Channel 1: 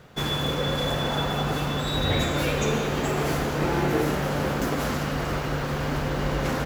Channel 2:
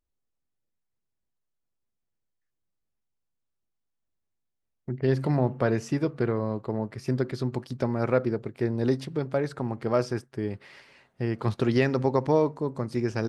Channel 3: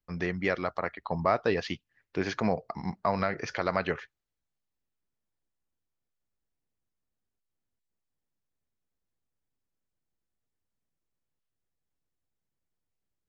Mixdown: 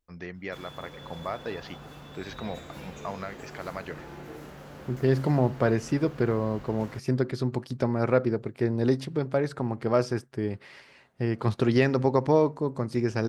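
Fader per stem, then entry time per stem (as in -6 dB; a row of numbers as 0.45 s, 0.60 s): -19.0 dB, +1.0 dB, -8.0 dB; 0.35 s, 0.00 s, 0.00 s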